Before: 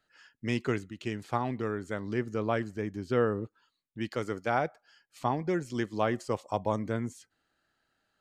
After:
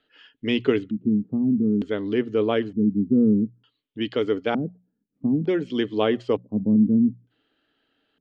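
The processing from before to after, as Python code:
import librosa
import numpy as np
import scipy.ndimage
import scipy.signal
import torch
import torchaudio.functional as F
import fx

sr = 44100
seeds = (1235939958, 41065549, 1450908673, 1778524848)

y = fx.hum_notches(x, sr, base_hz=60, count=3)
y = fx.filter_lfo_lowpass(y, sr, shape='square', hz=0.55, low_hz=210.0, high_hz=3200.0, q=5.0)
y = fx.small_body(y, sr, hz=(290.0, 420.0), ring_ms=40, db=14)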